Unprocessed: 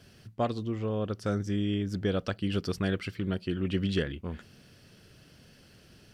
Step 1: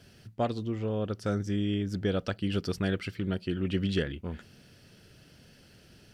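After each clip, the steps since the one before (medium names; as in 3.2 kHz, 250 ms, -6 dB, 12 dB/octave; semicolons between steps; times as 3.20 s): band-stop 1.1 kHz, Q 12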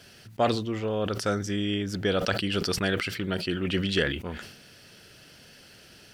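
bass shelf 370 Hz -11.5 dB; decay stretcher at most 67 dB/s; trim +8.5 dB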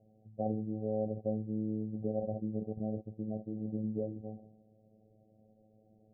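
robot voice 108 Hz; rippled Chebyshev low-pass 770 Hz, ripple 6 dB; trim -3 dB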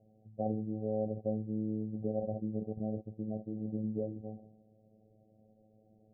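no audible change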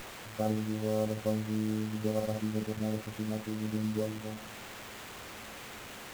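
word length cut 8-bit, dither triangular; sliding maximum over 9 samples; trim +3 dB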